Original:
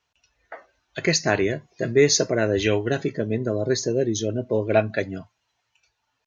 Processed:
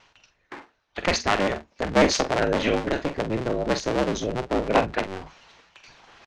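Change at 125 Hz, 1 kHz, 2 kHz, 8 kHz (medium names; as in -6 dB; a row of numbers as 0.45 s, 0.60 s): -5.0 dB, +7.0 dB, 0.0 dB, no reading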